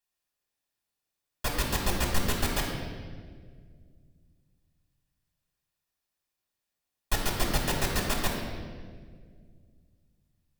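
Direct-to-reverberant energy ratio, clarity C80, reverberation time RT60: −3.0 dB, 3.5 dB, 1.8 s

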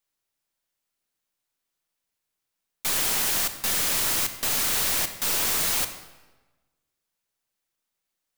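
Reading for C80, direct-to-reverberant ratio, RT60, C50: 12.5 dB, 9.0 dB, 1.2 s, 10.5 dB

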